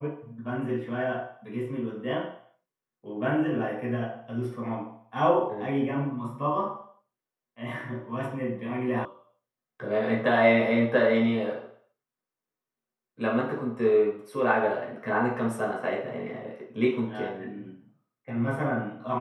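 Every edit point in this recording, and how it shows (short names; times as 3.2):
9.05 sound cut off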